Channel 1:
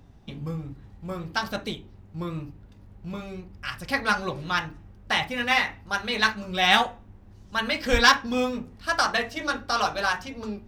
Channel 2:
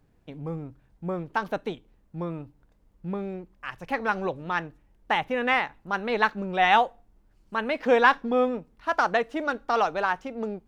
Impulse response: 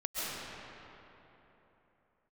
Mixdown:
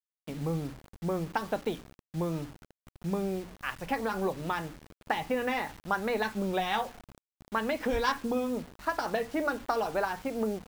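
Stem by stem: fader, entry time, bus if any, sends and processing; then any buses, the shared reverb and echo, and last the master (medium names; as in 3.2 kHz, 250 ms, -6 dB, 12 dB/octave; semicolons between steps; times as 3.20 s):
-10.5 dB, 0.00 s, no send, none
+2.5 dB, 0.00 s, no send, low-pass that closes with the level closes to 690 Hz, closed at -20 dBFS; treble shelf 2.3 kHz +3.5 dB; compression 10:1, threshold -27 dBFS, peak gain reduction 11 dB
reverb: none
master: treble shelf 2.1 kHz -7.5 dB; hum notches 60/120/180/240/300 Hz; bit crusher 8-bit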